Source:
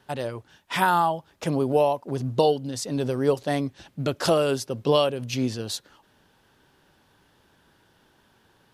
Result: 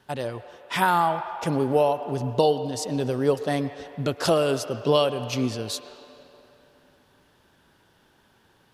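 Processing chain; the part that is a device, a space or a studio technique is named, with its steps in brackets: filtered reverb send (on a send: HPF 510 Hz 12 dB/oct + LPF 3500 Hz 12 dB/oct + reverb RT60 3.2 s, pre-delay 0.101 s, DRR 10.5 dB)

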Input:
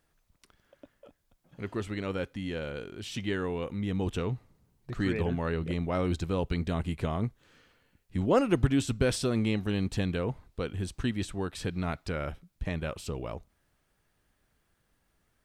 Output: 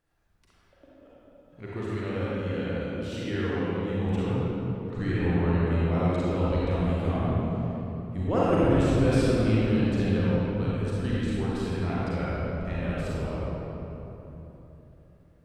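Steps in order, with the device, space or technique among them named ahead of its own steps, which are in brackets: swimming-pool hall (reverb RT60 3.5 s, pre-delay 35 ms, DRR -8 dB; high shelf 4100 Hz -7 dB); gain -5 dB

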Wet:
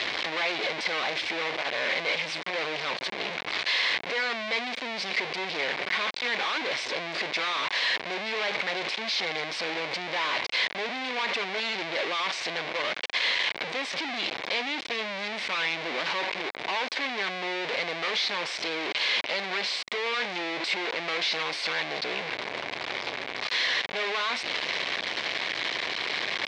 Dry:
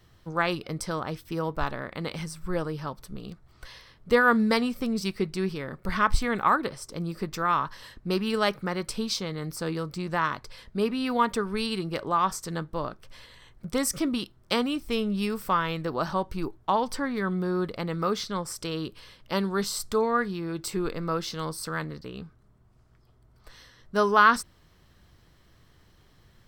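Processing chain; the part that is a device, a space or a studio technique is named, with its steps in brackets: 15.21–16.06 ten-band EQ 250 Hz +5 dB, 500 Hz -4 dB, 1000 Hz -9 dB, 2000 Hz +4 dB; home computer beeper (infinite clipping; speaker cabinet 610–4400 Hz, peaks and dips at 870 Hz -3 dB, 1300 Hz -8 dB, 2200 Hz +7 dB, 3800 Hz +3 dB); gain +4 dB

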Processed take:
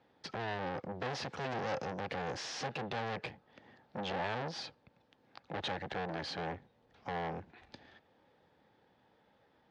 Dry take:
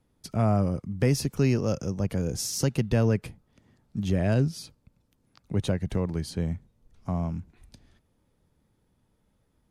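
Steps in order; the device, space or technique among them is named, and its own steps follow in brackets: guitar amplifier (tube stage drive 40 dB, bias 0.5; tone controls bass -10 dB, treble +11 dB; speaker cabinet 96–3600 Hz, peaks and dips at 520 Hz +4 dB, 800 Hz +9 dB, 1700 Hz +7 dB); gain +6.5 dB

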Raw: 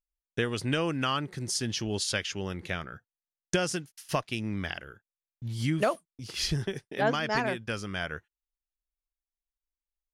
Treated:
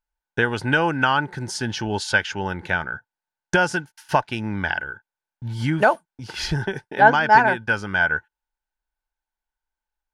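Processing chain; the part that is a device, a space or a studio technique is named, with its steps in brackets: inside a helmet (high shelf 5200 Hz -9.5 dB; small resonant body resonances 880/1500 Hz, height 17 dB, ringing for 30 ms); gain +5.5 dB

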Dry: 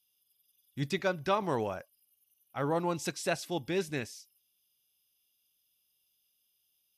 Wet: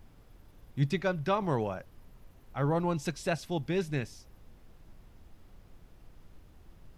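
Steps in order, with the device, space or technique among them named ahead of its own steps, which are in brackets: car interior (bell 140 Hz +8 dB 0.86 oct; high shelf 5000 Hz -7.5 dB; brown noise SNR 17 dB)

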